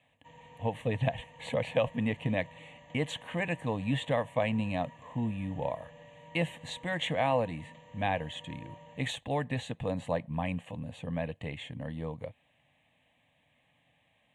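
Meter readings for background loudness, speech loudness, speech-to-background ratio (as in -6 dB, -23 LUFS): -54.0 LUFS, -34.0 LUFS, 20.0 dB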